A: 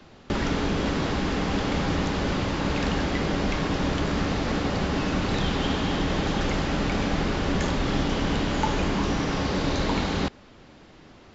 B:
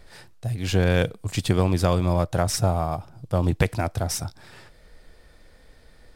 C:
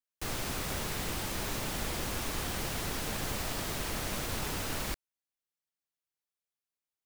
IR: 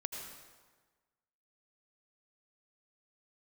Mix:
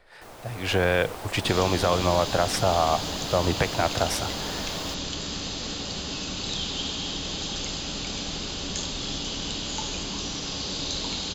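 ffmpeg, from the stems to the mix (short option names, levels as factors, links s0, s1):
-filter_complex "[0:a]bandreject=f=5600:w=14,aexciter=amount=8.9:drive=2.6:freq=2900,adelay=1150,volume=0.119[s0];[1:a]acrossover=split=430 3500:gain=0.224 1 0.251[s1][s2][s3];[s1][s2][s3]amix=inputs=3:normalize=0,alimiter=limit=0.112:level=0:latency=1:release=146,volume=1[s4];[2:a]equalizer=f=700:t=o:w=2:g=11.5,volume=0.178[s5];[s0][s4][s5]amix=inputs=3:normalize=0,dynaudnorm=f=370:g=3:m=2.51"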